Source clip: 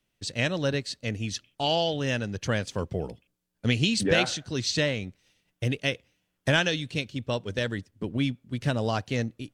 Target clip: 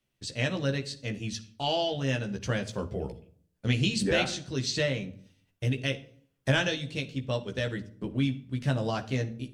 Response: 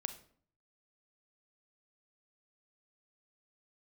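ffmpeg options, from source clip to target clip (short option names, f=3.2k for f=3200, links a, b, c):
-filter_complex "[0:a]asplit=2[a][b];[1:a]atrim=start_sample=2205,lowshelf=f=480:g=6.5,adelay=15[c];[b][c]afir=irnorm=-1:irlink=0,volume=-4.5dB[d];[a][d]amix=inputs=2:normalize=0,volume=-4.5dB"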